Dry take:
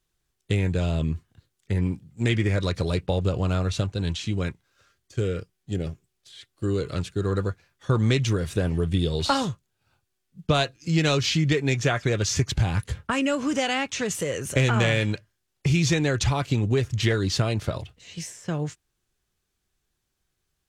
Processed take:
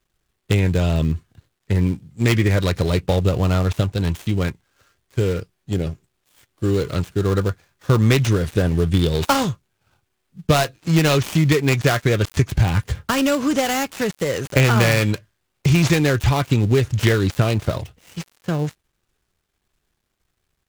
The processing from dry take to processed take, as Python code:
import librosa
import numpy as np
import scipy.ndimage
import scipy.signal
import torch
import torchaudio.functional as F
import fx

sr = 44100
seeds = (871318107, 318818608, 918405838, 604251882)

y = fx.dead_time(x, sr, dead_ms=0.14)
y = y * 10.0 ** (6.0 / 20.0)